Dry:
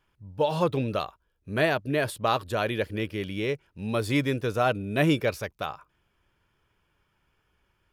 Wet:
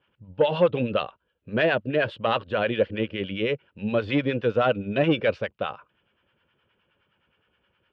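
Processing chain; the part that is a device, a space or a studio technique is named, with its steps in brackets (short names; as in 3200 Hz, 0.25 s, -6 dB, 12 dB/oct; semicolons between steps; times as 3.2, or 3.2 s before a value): guitar amplifier with harmonic tremolo (harmonic tremolo 9.6 Hz, depth 70%, crossover 760 Hz; soft clip -18.5 dBFS, distortion -18 dB; speaker cabinet 90–3600 Hz, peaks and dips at 220 Hz +5 dB, 520 Hz +9 dB, 1500 Hz +4 dB, 2900 Hz +9 dB); gain +3.5 dB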